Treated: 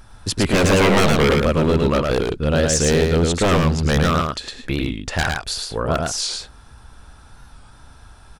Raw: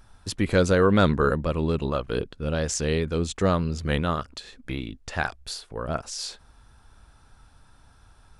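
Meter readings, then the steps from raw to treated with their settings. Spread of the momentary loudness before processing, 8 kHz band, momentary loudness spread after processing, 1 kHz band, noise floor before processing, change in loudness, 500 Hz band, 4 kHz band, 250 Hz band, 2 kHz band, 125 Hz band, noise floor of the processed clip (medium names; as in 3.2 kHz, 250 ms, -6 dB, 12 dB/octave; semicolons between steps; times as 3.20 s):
15 LU, +10.5 dB, 10 LU, +7.0 dB, -56 dBFS, +7.0 dB, +6.5 dB, +10.5 dB, +6.5 dB, +8.0 dB, +7.0 dB, -46 dBFS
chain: wavefolder -19.5 dBFS; on a send: delay 109 ms -3.5 dB; on the sum: warped record 45 rpm, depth 100 cents; trim +8.5 dB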